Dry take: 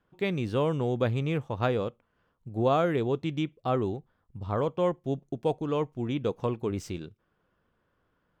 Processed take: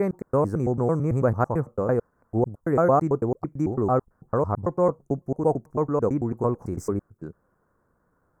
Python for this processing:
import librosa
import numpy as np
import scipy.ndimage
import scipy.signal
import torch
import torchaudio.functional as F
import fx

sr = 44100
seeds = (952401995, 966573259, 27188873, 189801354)

y = fx.block_reorder(x, sr, ms=111.0, group=3)
y = scipy.signal.sosfilt(scipy.signal.cheby1(2, 1.0, [1300.0, 7500.0], 'bandstop', fs=sr, output='sos'), y)
y = y * 10.0 ** (6.0 / 20.0)